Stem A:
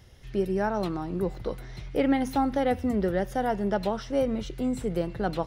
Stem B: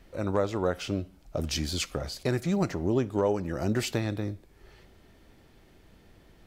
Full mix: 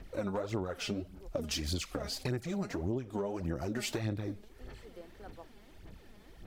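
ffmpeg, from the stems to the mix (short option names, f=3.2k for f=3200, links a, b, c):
-filter_complex "[0:a]highpass=350,volume=-18dB[a];[1:a]acompressor=threshold=-28dB:ratio=3,aphaser=in_gain=1:out_gain=1:delay=4.9:decay=0.63:speed=1.7:type=sinusoidal,volume=-1.5dB,asplit=2[b][c];[c]apad=whole_len=241048[d];[a][d]sidechaincompress=threshold=-51dB:ratio=8:attack=16:release=216[e];[e][b]amix=inputs=2:normalize=0,acompressor=threshold=-31dB:ratio=6"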